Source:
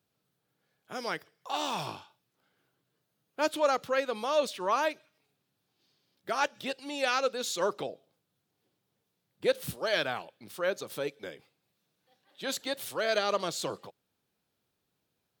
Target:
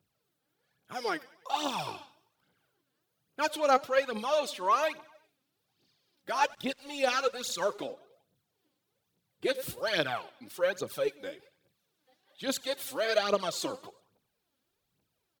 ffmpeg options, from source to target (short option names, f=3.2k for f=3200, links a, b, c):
-filter_complex "[0:a]aecho=1:1:94|188|282|376:0.0794|0.0429|0.0232|0.0125,aphaser=in_gain=1:out_gain=1:delay=4:decay=0.64:speed=1.2:type=triangular,asettb=1/sr,asplit=3[a][b][c];[a]atrim=end=6.484[d];[b]atrim=start=6.48:end=7.85,asetpts=PTS-STARTPTS,afade=t=in:d=0.004:c=qsin,afade=t=out:st=1.366:d=0.004:c=qsin,aeval=exprs='sgn(val(0))*max(abs(val(0))-0.00237,0)':c=same[e];[c]atrim=start=7.846[f];[d][e]acrossfade=d=0.004:c1=hsin:c2=qsin[g];[g][f]acrossfade=d=0.004:c1=qsin:c2=hsin,volume=-2dB"